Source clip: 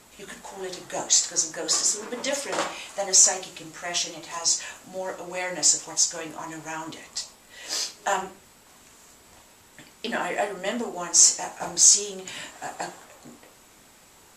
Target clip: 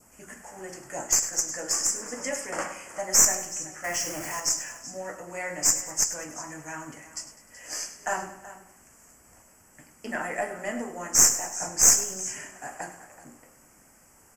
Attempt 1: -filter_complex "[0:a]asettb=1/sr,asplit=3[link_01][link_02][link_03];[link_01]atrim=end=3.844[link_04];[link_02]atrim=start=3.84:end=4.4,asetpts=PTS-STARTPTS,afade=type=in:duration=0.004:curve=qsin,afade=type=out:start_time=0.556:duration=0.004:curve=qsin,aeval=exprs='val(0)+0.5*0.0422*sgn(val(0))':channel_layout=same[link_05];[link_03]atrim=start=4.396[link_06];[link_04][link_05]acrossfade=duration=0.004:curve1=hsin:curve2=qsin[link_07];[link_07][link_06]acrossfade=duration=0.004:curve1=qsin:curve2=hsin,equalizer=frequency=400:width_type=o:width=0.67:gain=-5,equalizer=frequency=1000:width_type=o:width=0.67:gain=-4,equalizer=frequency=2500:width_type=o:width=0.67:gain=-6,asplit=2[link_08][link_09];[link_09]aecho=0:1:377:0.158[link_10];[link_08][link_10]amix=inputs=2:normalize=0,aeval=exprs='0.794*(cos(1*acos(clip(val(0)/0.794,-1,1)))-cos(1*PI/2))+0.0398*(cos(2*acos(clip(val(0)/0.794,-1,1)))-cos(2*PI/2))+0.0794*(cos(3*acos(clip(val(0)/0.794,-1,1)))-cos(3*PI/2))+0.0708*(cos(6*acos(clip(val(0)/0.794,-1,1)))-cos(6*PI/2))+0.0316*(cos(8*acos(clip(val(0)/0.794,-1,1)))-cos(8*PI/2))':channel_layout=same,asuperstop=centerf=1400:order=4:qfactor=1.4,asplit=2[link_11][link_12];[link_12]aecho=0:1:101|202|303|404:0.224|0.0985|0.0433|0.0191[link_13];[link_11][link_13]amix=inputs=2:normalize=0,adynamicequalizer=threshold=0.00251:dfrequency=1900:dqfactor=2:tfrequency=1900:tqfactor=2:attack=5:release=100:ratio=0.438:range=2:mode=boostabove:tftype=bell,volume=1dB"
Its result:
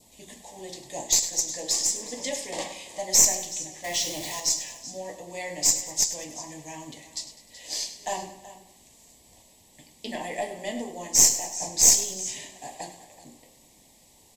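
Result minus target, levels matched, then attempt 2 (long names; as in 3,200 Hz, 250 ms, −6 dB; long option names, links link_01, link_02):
4,000 Hz band +3.5 dB
-filter_complex "[0:a]asettb=1/sr,asplit=3[link_01][link_02][link_03];[link_01]atrim=end=3.844[link_04];[link_02]atrim=start=3.84:end=4.4,asetpts=PTS-STARTPTS,afade=type=in:duration=0.004:curve=qsin,afade=type=out:start_time=0.556:duration=0.004:curve=qsin,aeval=exprs='val(0)+0.5*0.0422*sgn(val(0))':channel_layout=same[link_05];[link_03]atrim=start=4.396[link_06];[link_04][link_05]acrossfade=duration=0.004:curve1=hsin:curve2=qsin[link_07];[link_07][link_06]acrossfade=duration=0.004:curve1=qsin:curve2=hsin,equalizer=frequency=400:width_type=o:width=0.67:gain=-5,equalizer=frequency=1000:width_type=o:width=0.67:gain=-4,equalizer=frequency=2500:width_type=o:width=0.67:gain=-6,asplit=2[link_08][link_09];[link_09]aecho=0:1:377:0.158[link_10];[link_08][link_10]amix=inputs=2:normalize=0,aeval=exprs='0.794*(cos(1*acos(clip(val(0)/0.794,-1,1)))-cos(1*PI/2))+0.0398*(cos(2*acos(clip(val(0)/0.794,-1,1)))-cos(2*PI/2))+0.0794*(cos(3*acos(clip(val(0)/0.794,-1,1)))-cos(3*PI/2))+0.0708*(cos(6*acos(clip(val(0)/0.794,-1,1)))-cos(6*PI/2))+0.0316*(cos(8*acos(clip(val(0)/0.794,-1,1)))-cos(8*PI/2))':channel_layout=same,asuperstop=centerf=3800:order=4:qfactor=1.4,asplit=2[link_11][link_12];[link_12]aecho=0:1:101|202|303|404:0.224|0.0985|0.0433|0.0191[link_13];[link_11][link_13]amix=inputs=2:normalize=0,adynamicequalizer=threshold=0.00251:dfrequency=1900:dqfactor=2:tfrequency=1900:tqfactor=2:attack=5:release=100:ratio=0.438:range=2:mode=boostabove:tftype=bell,volume=1dB"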